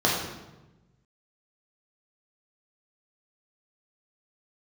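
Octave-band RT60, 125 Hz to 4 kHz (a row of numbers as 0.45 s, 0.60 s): 1.7 s, 1.4 s, 1.1 s, 1.0 s, 0.85 s, 0.75 s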